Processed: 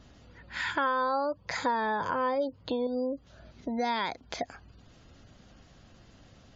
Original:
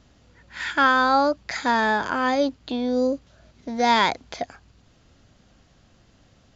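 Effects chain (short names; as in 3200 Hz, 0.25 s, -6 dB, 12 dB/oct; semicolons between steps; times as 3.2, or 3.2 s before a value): spectral gate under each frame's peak -30 dB strong; 0.63–2.87 thirty-one-band EQ 100 Hz +11 dB, 160 Hz +11 dB, 500 Hz +12 dB, 1000 Hz +10 dB; compressor 3:1, threshold -33 dBFS, peak gain reduction 17.5 dB; gain +1.5 dB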